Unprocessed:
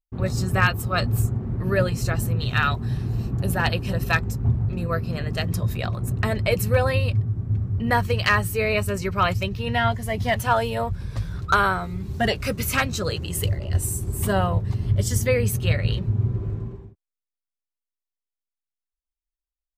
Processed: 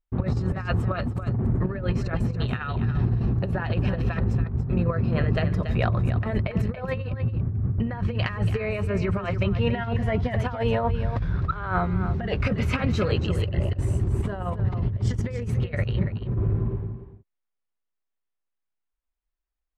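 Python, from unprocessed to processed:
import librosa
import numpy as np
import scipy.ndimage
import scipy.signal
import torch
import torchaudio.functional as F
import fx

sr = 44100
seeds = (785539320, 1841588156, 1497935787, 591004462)

y = scipy.signal.sosfilt(scipy.signal.butter(2, 2200.0, 'lowpass', fs=sr, output='sos'), x)
y = fx.over_compress(y, sr, threshold_db=-26.0, ratio=-0.5)
y = y + 10.0 ** (-10.0 / 20.0) * np.pad(y, (int(282 * sr / 1000.0), 0))[:len(y)]
y = y * librosa.db_to_amplitude(2.0)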